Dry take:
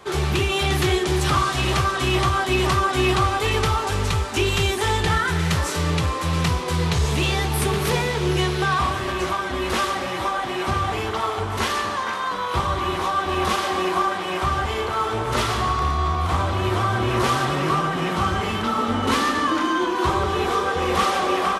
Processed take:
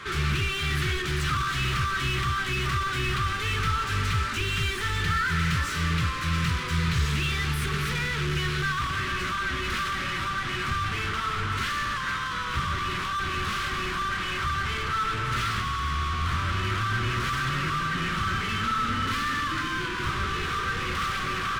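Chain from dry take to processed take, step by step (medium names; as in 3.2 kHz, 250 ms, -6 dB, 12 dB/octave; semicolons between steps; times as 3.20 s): overdrive pedal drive 30 dB, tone 1.4 kHz, clips at -8 dBFS; FFT filter 130 Hz 0 dB, 790 Hz -29 dB, 1.3 kHz -6 dB; trim -2 dB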